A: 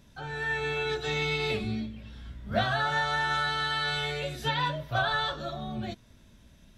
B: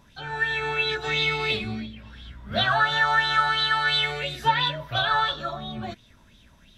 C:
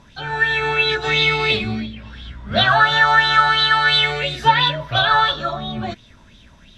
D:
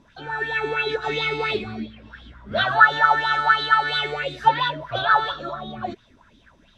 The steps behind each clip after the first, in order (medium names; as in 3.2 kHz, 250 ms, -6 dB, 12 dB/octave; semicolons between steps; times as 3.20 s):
sweeping bell 2.9 Hz 930–3800 Hz +14 dB
low-pass 7.7 kHz 12 dB/octave; trim +7.5 dB
sweeping bell 4.4 Hz 270–1600 Hz +16 dB; trim -11 dB